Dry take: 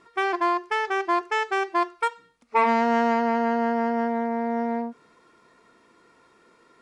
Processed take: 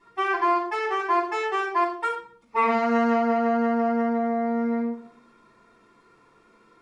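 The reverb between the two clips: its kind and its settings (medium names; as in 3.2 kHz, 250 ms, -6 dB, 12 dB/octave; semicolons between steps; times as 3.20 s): simulated room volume 520 m³, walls furnished, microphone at 9.2 m; trim -13 dB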